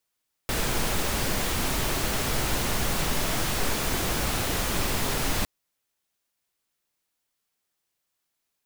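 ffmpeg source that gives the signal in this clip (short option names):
-f lavfi -i "anoisesrc=c=pink:a=0.257:d=4.96:r=44100:seed=1"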